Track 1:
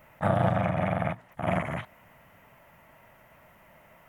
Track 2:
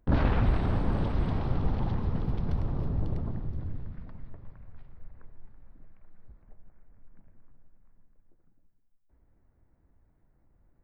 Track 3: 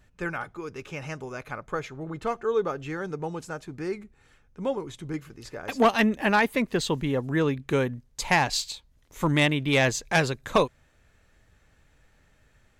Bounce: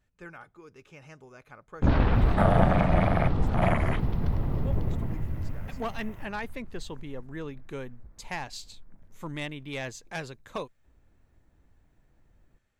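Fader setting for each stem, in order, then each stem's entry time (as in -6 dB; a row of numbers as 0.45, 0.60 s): +2.0, +2.5, -13.5 dB; 2.15, 1.75, 0.00 s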